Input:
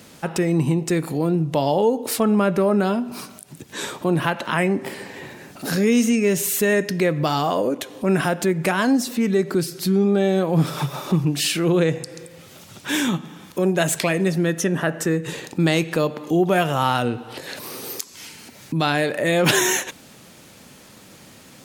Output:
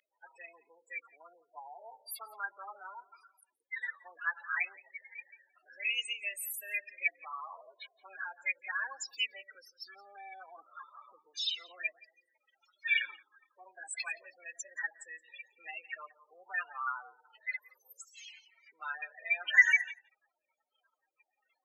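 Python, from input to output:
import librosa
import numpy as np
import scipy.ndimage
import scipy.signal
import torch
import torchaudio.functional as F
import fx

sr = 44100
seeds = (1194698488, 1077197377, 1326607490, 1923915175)

y = fx.spec_topn(x, sr, count=16)
y = fx.formant_shift(y, sr, semitones=4)
y = fx.ladder_highpass(y, sr, hz=1800.0, resonance_pct=65)
y = y + 10.0 ** (-23.0 / 20.0) * np.pad(y, (int(172 * sr / 1000.0), 0))[:len(y)]
y = y * 10.0 ** (5.5 / 20.0)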